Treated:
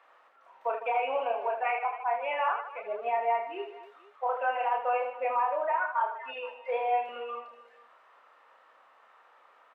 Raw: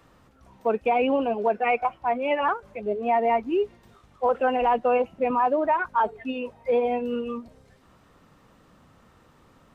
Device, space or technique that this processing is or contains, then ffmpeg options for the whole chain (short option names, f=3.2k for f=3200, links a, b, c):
DJ mixer with the lows and highs turned down: -filter_complex "[0:a]highpass=530,asettb=1/sr,asplit=3[a][b][c];[a]atrim=end=5.354[d];[b]atrim=start=5.35:end=7.09,asetpts=PTS-STARTPTS,afade=t=in:d=0.004:c=qsin,afade=t=out:st=1.736:d=0.004:c=qsin,highpass=290[e];[c]atrim=start=7.086[f];[d][e]acrossfade=d=0.004:c1=hsin:c2=qsin[g];[g][f]acrossfade=d=0.004:c1=qsin:c2=hsin,acrossover=split=510 2800:gain=0.0708 1 0.112[h][i][j];[h][i][j]amix=inputs=3:normalize=0,alimiter=limit=-23dB:level=0:latency=1:release=352,aecho=1:1:30|78|154.8|277.7|474.3:0.631|0.398|0.251|0.158|0.1,volume=1dB"